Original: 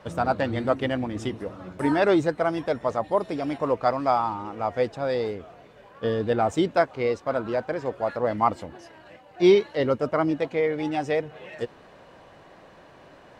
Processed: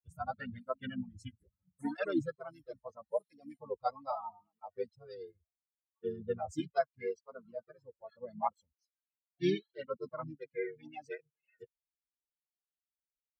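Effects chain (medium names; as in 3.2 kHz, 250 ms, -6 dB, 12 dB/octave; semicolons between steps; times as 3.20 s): expander on every frequency bin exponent 3; harmony voices -4 st -8 dB; cancelling through-zero flanger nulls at 0.76 Hz, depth 5.3 ms; trim -5 dB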